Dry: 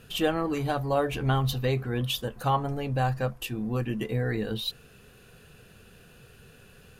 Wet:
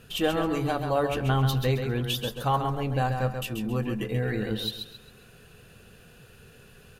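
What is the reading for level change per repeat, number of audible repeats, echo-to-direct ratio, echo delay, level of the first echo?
−10.0 dB, 3, −6.0 dB, 134 ms, −6.5 dB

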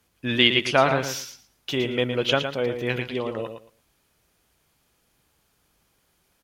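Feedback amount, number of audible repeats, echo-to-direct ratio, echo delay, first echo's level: 18%, 2, −8.0 dB, 113 ms, −8.0 dB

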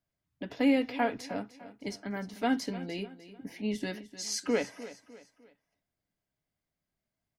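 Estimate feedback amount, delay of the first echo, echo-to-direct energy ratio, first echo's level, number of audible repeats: 39%, 302 ms, −15.0 dB, −15.5 dB, 3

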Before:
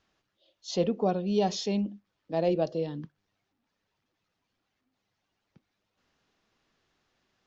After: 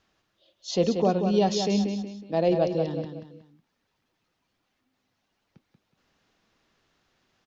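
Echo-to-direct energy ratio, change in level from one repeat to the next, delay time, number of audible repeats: −6.5 dB, −9.0 dB, 184 ms, 3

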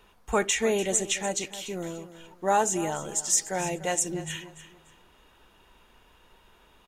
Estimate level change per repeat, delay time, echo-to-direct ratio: −11.5 dB, 292 ms, −14.0 dB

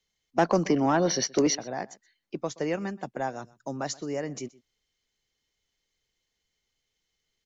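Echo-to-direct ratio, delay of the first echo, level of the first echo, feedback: −22.0 dB, 125 ms, −22.0 dB, repeats not evenly spaced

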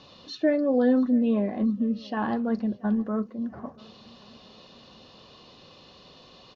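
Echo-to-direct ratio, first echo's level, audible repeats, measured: −22.5 dB, −23.5 dB, 2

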